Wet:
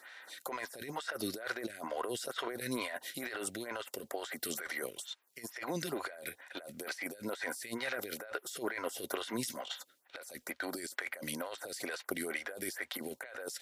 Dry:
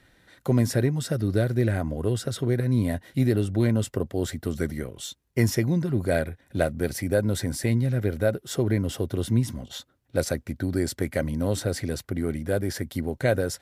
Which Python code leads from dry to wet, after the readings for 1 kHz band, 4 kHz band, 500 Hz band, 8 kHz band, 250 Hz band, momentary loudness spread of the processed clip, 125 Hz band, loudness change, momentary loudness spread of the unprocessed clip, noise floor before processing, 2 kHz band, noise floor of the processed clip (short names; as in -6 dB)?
-3.5 dB, -4.5 dB, -14.5 dB, -6.5 dB, -17.0 dB, 7 LU, -30.0 dB, -13.5 dB, 7 LU, -65 dBFS, -4.0 dB, -70 dBFS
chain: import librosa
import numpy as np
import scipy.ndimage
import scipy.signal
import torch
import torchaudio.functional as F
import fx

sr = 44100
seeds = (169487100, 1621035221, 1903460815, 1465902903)

y = scipy.signal.sosfilt(scipy.signal.butter(2, 970.0, 'highpass', fs=sr, output='sos'), x)
y = fx.over_compress(y, sr, threshold_db=-45.0, ratio=-1.0)
y = fx.stagger_phaser(y, sr, hz=2.2)
y = y * librosa.db_to_amplitude(7.0)